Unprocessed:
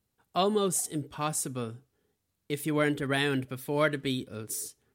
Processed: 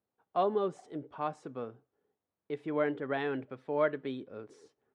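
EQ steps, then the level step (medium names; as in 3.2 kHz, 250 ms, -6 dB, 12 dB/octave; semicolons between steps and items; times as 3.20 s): band-pass filter 670 Hz, Q 0.9; distance through air 120 m; 0.0 dB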